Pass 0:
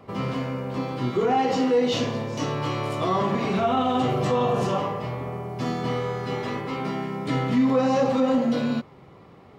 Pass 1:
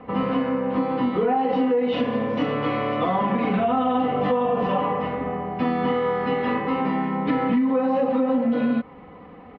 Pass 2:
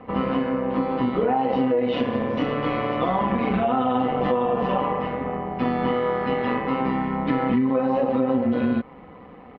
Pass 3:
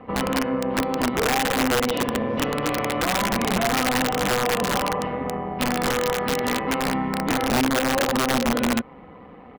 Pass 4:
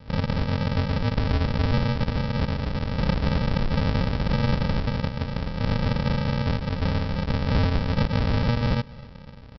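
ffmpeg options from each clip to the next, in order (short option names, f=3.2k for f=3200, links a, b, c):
-af "lowpass=f=2.8k:w=0.5412,lowpass=f=2.8k:w=1.3066,aecho=1:1:4:0.83,acompressor=threshold=-22dB:ratio=10,volume=4dB"
-af "tremolo=f=130:d=0.519,volume=2dB"
-af "aeval=exprs='(mod(5.62*val(0)+1,2)-1)/5.62':c=same"
-af "aresample=11025,acrusher=samples=31:mix=1:aa=0.000001,aresample=44100,aecho=1:1:263:0.0794"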